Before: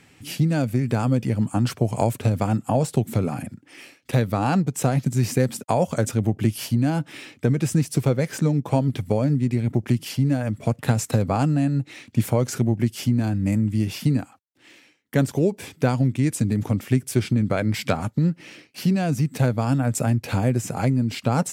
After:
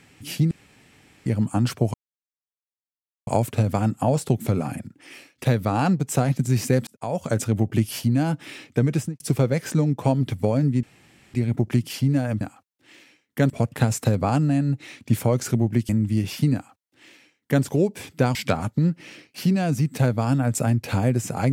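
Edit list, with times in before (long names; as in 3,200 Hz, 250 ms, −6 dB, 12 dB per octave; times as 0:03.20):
0:00.51–0:01.26: fill with room tone
0:01.94: splice in silence 1.33 s
0:05.54–0:06.05: fade in
0:07.61–0:07.87: fade out and dull
0:09.50: splice in room tone 0.51 s
0:12.96–0:13.52: remove
0:14.17–0:15.26: duplicate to 0:10.57
0:15.98–0:17.75: remove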